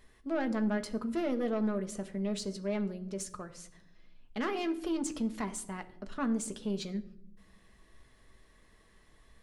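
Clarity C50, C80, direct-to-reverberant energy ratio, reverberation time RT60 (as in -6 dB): 15.5 dB, 18.5 dB, 7.0 dB, 0.70 s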